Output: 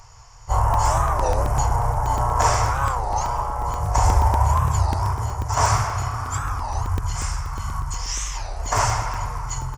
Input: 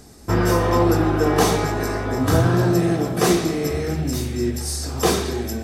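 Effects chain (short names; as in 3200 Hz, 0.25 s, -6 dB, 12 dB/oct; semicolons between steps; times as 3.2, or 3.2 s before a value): short-mantissa float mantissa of 4-bit; spring tank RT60 1.9 s, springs 31 ms, chirp 55 ms, DRR 18 dB; harmoniser -7 st -7 dB; EQ curve 210 Hz 0 dB, 320 Hz -29 dB, 540 Hz -22 dB, 1700 Hz +12 dB, 6600 Hz -18 dB, 9500 Hz +4 dB; speed mistake 78 rpm record played at 45 rpm; crackling interface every 0.12 s, samples 64, zero, from 0.74; record warp 33 1/3 rpm, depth 250 cents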